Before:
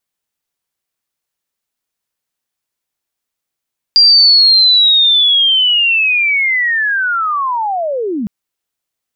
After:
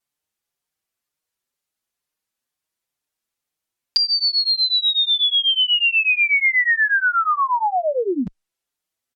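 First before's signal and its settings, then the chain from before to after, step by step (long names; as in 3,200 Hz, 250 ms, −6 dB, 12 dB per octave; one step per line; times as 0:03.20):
glide linear 4,800 Hz → 190 Hz −3.5 dBFS → −15.5 dBFS 4.31 s
treble cut that deepens with the level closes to 2,800 Hz, closed at −10.5 dBFS
barber-pole flanger 5.5 ms +2.1 Hz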